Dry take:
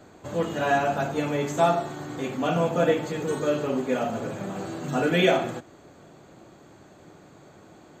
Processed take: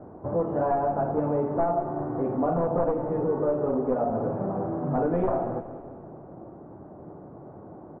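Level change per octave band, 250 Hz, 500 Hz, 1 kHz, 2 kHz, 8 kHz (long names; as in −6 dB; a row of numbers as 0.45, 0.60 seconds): −0.5 dB, −0.5 dB, −1.0 dB, −16.0 dB, below −35 dB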